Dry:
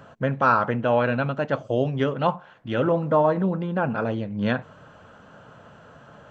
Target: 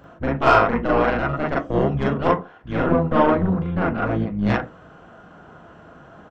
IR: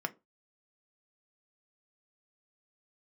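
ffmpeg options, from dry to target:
-filter_complex "[0:a]aeval=exprs='0.447*(cos(1*acos(clip(val(0)/0.447,-1,1)))-cos(1*PI/2))+0.0562*(cos(2*acos(clip(val(0)/0.447,-1,1)))-cos(2*PI/2))+0.0282*(cos(3*acos(clip(val(0)/0.447,-1,1)))-cos(3*PI/2))+0.0794*(cos(4*acos(clip(val(0)/0.447,-1,1)))-cos(4*PI/2))+0.01*(cos(8*acos(clip(val(0)/0.447,-1,1)))-cos(8*PI/2))':c=same,asplit=2[a][b];[b]asetrate=22050,aresample=44100,atempo=2,volume=-1dB[c];[a][c]amix=inputs=2:normalize=0,asplit=2[d][e];[1:a]atrim=start_sample=2205,adelay=40[f];[e][f]afir=irnorm=-1:irlink=0,volume=1dB[g];[d][g]amix=inputs=2:normalize=0,volume=-3dB"

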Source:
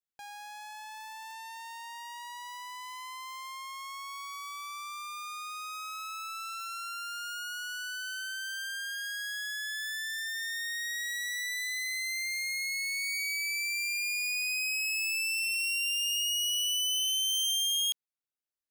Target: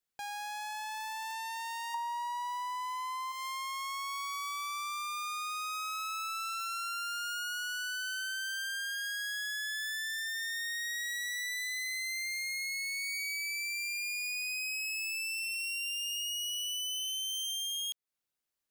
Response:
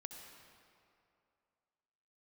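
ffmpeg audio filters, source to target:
-filter_complex "[0:a]asettb=1/sr,asplit=3[a][b][c];[a]atrim=end=1.944[d];[b]atrim=start=1.94:end=3.32,asetpts=PTS-STARTPTS,afade=t=in:d=0.004:c=qsin,afade=t=out:st=1.376:d=0.004:c=qsin,equalizer=f=890:w=3:g=14[e];[c]atrim=start=3.316[f];[d][e]acrossfade=d=0.004:c1=hsin:c2=qsin[g];[g][f]acrossfade=d=0.004:c1=qsin:c2=hsin,acompressor=threshold=-40dB:ratio=10,volume=5.5dB"

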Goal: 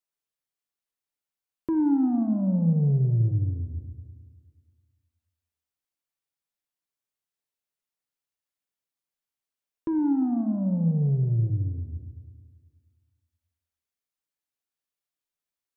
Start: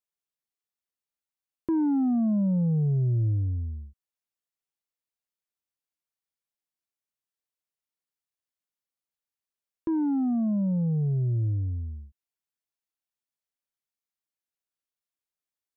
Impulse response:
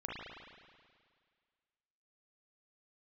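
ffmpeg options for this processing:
-filter_complex "[0:a]asplit=2[a][b];[1:a]atrim=start_sample=2205,adelay=7[c];[b][c]afir=irnorm=-1:irlink=0,volume=-7.5dB[d];[a][d]amix=inputs=2:normalize=0"

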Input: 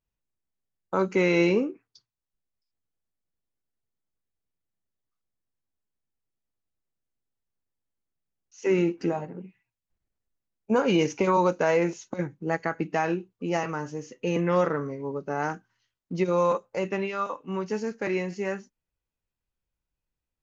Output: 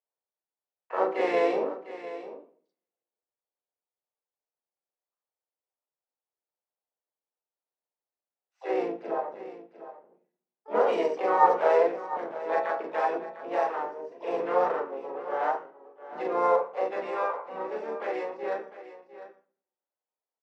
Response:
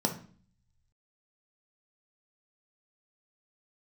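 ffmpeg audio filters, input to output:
-filter_complex "[0:a]adynamicsmooth=sensitivity=5:basefreq=2.1k,highshelf=f=2.4k:g=-4.5,asplit=2[a][b];[1:a]atrim=start_sample=2205,highshelf=f=4.2k:g=7,adelay=37[c];[b][c]afir=irnorm=-1:irlink=0,volume=-6.5dB[d];[a][d]amix=inputs=2:normalize=0,asplit=4[e][f][g][h];[f]asetrate=37084,aresample=44100,atempo=1.18921,volume=-5dB[i];[g]asetrate=58866,aresample=44100,atempo=0.749154,volume=-9dB[j];[h]asetrate=88200,aresample=44100,atempo=0.5,volume=-17dB[k];[e][i][j][k]amix=inputs=4:normalize=0,highpass=f=500:w=0.5412,highpass=f=500:w=1.3066,aemphasis=mode=reproduction:type=75fm,aecho=1:1:701:0.2,volume=-4.5dB"

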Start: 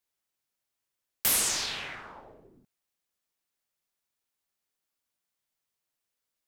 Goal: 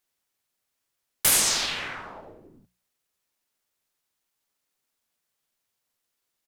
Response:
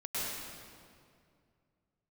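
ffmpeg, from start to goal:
-filter_complex "[0:a]asplit=2[a][b];[b]asetrate=33038,aresample=44100,atempo=1.33484,volume=-1dB[c];[a][c]amix=inputs=2:normalize=0,bandreject=f=60:t=h:w=6,bandreject=f=120:t=h:w=6,bandreject=f=180:t=h:w=6,volume=2.5dB"

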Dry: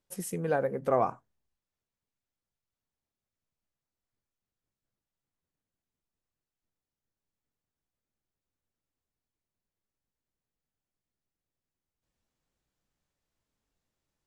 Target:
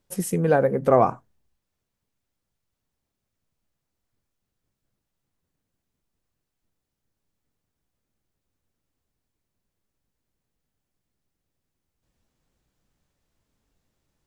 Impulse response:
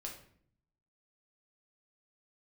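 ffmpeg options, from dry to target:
-af "lowshelf=f=430:g=5,volume=7dB"

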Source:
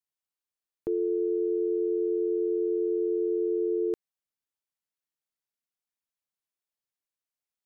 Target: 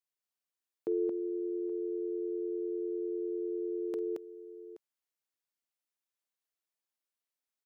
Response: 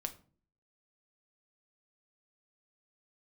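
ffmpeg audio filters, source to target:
-af "highpass=240,aecho=1:1:49|224|825:0.133|0.708|0.133,volume=-2.5dB"

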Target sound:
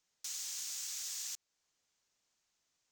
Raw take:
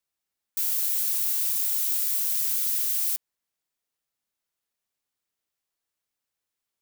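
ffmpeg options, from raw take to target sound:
-filter_complex "[0:a]highshelf=f=3.7k:t=q:w=3:g=-9.5,aresample=16000,aresample=44100,asetrate=103194,aresample=44100,asplit=2[a][b];[b]acompressor=threshold=-57dB:ratio=6,volume=2dB[c];[a][c]amix=inputs=2:normalize=0,volume=1dB"

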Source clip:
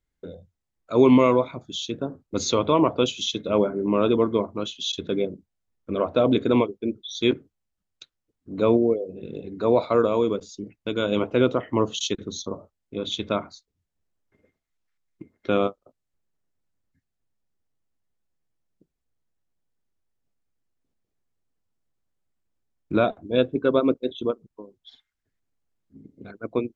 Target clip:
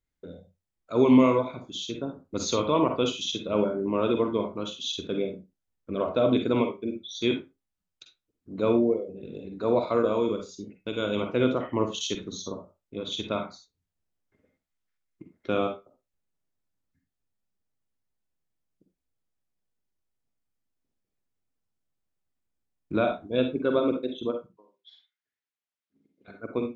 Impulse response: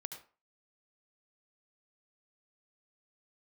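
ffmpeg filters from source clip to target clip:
-filter_complex "[0:a]asettb=1/sr,asplit=3[a][b][c];[a]atrim=end=24.474[d];[b]atrim=start=24.47:end=26.28,asetpts=PTS-STARTPTS,afade=t=in:d=0.004:c=qsin,afade=t=out:st=1.806:d=0.004:c=qsin,bandpass=f=2.6k:t=q:w=0.74:csg=0[e];[c]atrim=start=26.276[f];[d][e]acrossfade=d=0.004:c1=hsin:c2=qsin[g];[g][f]acrossfade=d=0.004:c1=qsin:c2=hsin[h];[1:a]atrim=start_sample=2205,asetrate=70560,aresample=44100[i];[h][i]afir=irnorm=-1:irlink=0,volume=3.5dB"

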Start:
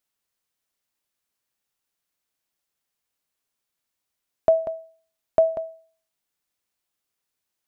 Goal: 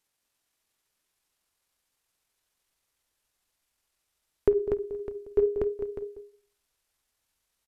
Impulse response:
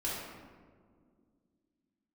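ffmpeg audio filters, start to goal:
-filter_complex "[0:a]asplit=2[a][b];[b]acompressor=threshold=-31dB:ratio=10,volume=1.5dB[c];[a][c]amix=inputs=2:normalize=0,flanger=delay=9.5:depth=9.4:regen=-65:speed=0.52:shape=triangular,asubboost=boost=4:cutoff=120,aecho=1:1:231|449|591:0.531|0.178|0.2,asetrate=27781,aresample=44100,atempo=1.5874"

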